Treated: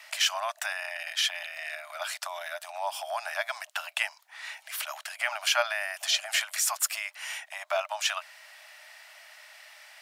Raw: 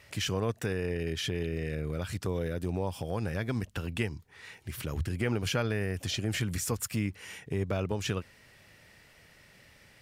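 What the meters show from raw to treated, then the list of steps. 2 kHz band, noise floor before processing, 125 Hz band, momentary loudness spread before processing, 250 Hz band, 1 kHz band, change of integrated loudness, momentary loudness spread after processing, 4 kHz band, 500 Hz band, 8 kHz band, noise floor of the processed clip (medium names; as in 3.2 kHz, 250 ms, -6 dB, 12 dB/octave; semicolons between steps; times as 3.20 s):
+8.5 dB, -59 dBFS, under -40 dB, 6 LU, under -40 dB, +8.5 dB, +2.5 dB, 23 LU, +9.0 dB, -3.0 dB, +8.5 dB, -60 dBFS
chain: Chebyshev high-pass 600 Hz, order 10; trim +9 dB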